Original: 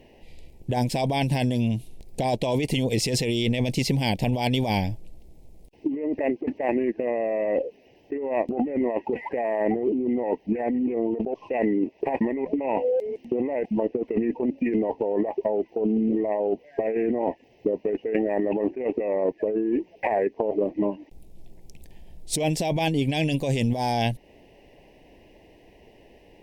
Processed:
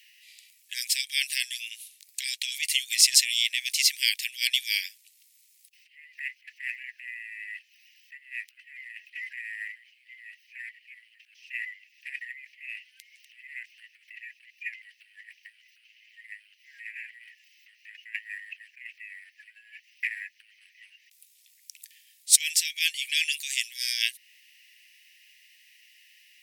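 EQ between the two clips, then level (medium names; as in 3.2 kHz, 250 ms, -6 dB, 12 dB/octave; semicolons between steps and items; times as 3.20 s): steep high-pass 1.7 kHz 72 dB/octave; treble shelf 3.7 kHz +12 dB; +1.5 dB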